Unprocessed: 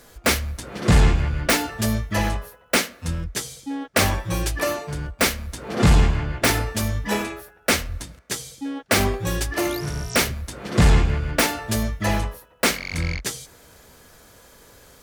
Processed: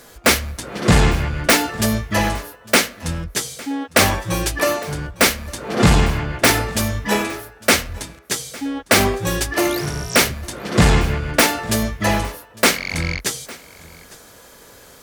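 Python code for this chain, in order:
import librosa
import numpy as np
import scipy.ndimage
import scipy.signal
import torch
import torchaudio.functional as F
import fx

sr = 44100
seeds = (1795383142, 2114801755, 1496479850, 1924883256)

y = fx.low_shelf(x, sr, hz=98.0, db=-8.5)
y = y + 10.0 ** (-21.5 / 20.0) * np.pad(y, (int(855 * sr / 1000.0), 0))[:len(y)]
y = y * 10.0 ** (5.5 / 20.0)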